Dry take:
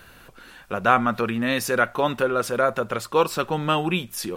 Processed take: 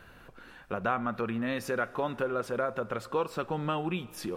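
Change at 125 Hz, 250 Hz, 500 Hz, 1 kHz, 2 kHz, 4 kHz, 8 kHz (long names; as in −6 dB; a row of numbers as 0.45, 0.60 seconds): −7.5, −7.5, −8.5, −10.5, −11.0, −13.5, −14.5 decibels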